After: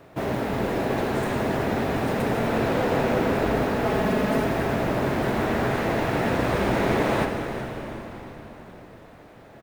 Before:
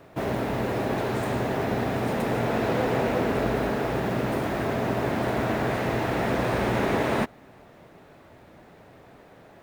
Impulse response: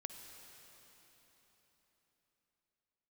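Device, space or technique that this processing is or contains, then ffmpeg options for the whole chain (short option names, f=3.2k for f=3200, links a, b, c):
cathedral: -filter_complex "[0:a]asettb=1/sr,asplit=3[a][b][c];[a]atrim=end=3.854[d];[b]atrim=start=3.85:end=4.44,asetpts=PTS-STARTPTS,afade=t=in:d=0.004:c=qsin,afade=t=out:st=0.586:d=0.004:c=qsin,aecho=1:1:4.7:0.77,atrim=end_sample=26019[e];[c]atrim=start=4.436[f];[d][e]acrossfade=d=0.004:c1=hsin:c2=qsin[g];[g][f]acrossfade=d=0.004:c1=qsin:c2=hsin[h];[1:a]atrim=start_sample=2205[i];[h][i]afir=irnorm=-1:irlink=0,asplit=6[j][k][l][m][n][o];[k]adelay=366,afreqshift=-130,volume=-14dB[p];[l]adelay=732,afreqshift=-260,volume=-19.7dB[q];[m]adelay=1098,afreqshift=-390,volume=-25.4dB[r];[n]adelay=1464,afreqshift=-520,volume=-31dB[s];[o]adelay=1830,afreqshift=-650,volume=-36.7dB[t];[j][p][q][r][s][t]amix=inputs=6:normalize=0,volume=5dB"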